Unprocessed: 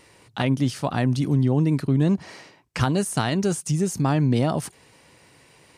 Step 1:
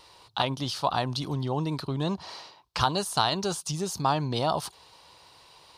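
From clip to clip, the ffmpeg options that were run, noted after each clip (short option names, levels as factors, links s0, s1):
-af "equalizer=f=125:t=o:w=1:g=-8,equalizer=f=250:t=o:w=1:g=-11,equalizer=f=500:t=o:w=1:g=-3,equalizer=f=1000:t=o:w=1:g=8,equalizer=f=2000:t=o:w=1:g=-11,equalizer=f=4000:t=o:w=1:g=11,equalizer=f=8000:t=o:w=1:g=-7"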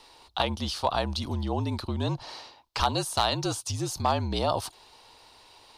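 -af "afreqshift=-50,volume=4.47,asoftclip=hard,volume=0.224"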